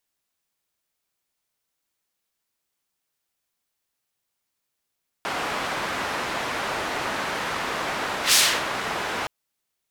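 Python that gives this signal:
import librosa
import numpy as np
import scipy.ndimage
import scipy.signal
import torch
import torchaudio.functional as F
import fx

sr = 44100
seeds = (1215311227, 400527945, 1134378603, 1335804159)

y = fx.whoosh(sr, seeds[0], length_s=4.02, peak_s=3.09, rise_s=0.12, fall_s=0.33, ends_hz=1200.0, peak_hz=5900.0, q=0.71, swell_db=12.5)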